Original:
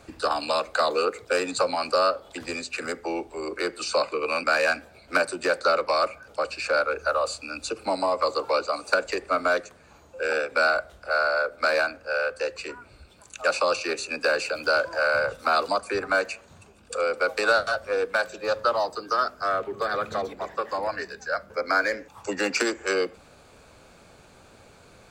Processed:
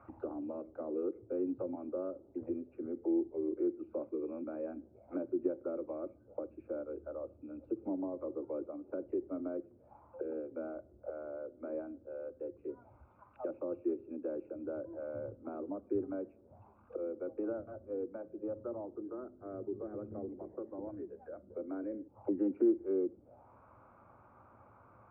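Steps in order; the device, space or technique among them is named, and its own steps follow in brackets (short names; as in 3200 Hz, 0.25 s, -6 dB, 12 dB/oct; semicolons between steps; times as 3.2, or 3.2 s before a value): envelope filter bass rig (envelope low-pass 350–1300 Hz down, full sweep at -29 dBFS; speaker cabinet 74–2300 Hz, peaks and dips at 110 Hz +6 dB, 160 Hz -10 dB, 440 Hz -10 dB, 700 Hz -4 dB, 1100 Hz -5 dB, 1700 Hz -9 dB); gain -7.5 dB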